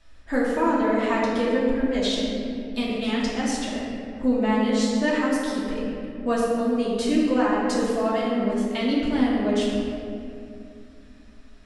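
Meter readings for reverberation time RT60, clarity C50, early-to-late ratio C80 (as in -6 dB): 2.6 s, -1.0 dB, 0.5 dB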